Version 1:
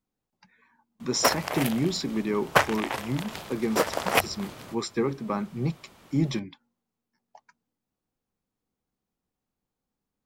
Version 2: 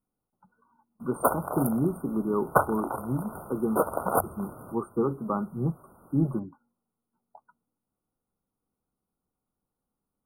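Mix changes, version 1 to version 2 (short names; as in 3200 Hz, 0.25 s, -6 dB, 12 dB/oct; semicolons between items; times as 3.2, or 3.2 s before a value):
speech: add graphic EQ 2000/4000/8000 Hz +3/+4/+7 dB; master: add brick-wall FIR band-stop 1500–8800 Hz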